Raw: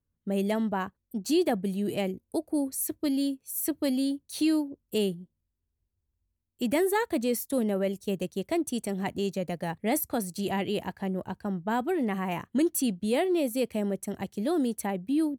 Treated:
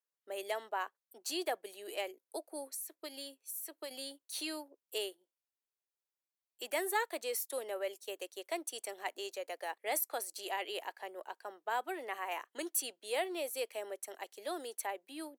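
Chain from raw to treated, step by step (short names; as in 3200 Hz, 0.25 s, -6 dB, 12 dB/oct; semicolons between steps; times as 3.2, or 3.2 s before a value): Bessel high-pass 690 Hz, order 8; 2.67–3.91 compressor 10:1, threshold -37 dBFS, peak gain reduction 10 dB; gain -3 dB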